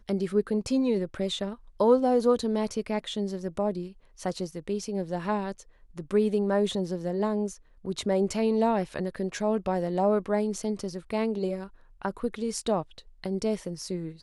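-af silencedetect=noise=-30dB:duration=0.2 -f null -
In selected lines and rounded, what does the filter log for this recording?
silence_start: 1.53
silence_end: 1.80 | silence_duration: 0.27
silence_start: 3.84
silence_end: 4.22 | silence_duration: 0.38
silence_start: 5.52
silence_end: 5.98 | silence_duration: 0.46
silence_start: 7.48
silence_end: 7.85 | silence_duration: 0.37
silence_start: 11.64
silence_end: 12.05 | silence_duration: 0.41
silence_start: 12.82
silence_end: 13.24 | silence_duration: 0.42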